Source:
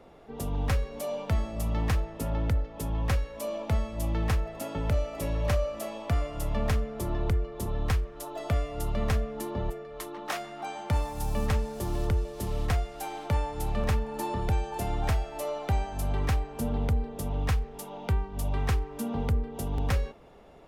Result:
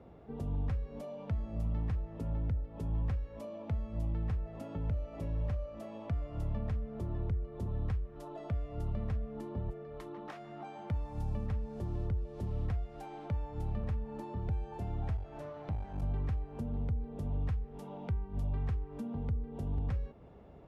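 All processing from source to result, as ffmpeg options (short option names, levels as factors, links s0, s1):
-filter_complex "[0:a]asettb=1/sr,asplit=3[s0][s1][s2];[s0]atrim=end=15.174[s3];[s1]atrim=start=15.17:end=16.03,asetpts=PTS-STARTPTS,afade=t=in:d=0.004:c=qsin,afade=t=out:st=0.856:d=0.004:c=qsin,highshelf=f=9800:g=-6.5,aeval=exprs='clip(val(0),-1,0.00944)':c=same[s4];[s2]atrim=start=16.026[s5];[s3][s4]acrossfade=d=0.004:c1=hsin:c2=qsin[s6];[s6][s5]acrossfade=d=0.004:c1=qsin:c2=hsin,highpass=77,acompressor=threshold=0.0141:ratio=6,aemphasis=mode=reproduction:type=riaa,volume=0.473"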